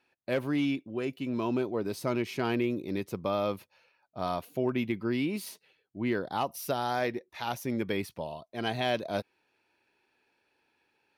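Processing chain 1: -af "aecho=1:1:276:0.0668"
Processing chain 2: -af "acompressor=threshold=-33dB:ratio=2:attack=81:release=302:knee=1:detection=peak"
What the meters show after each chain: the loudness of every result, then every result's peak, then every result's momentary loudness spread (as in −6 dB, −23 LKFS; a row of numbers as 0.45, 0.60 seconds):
−32.0, −34.0 LKFS; −17.5, −18.0 dBFS; 9, 7 LU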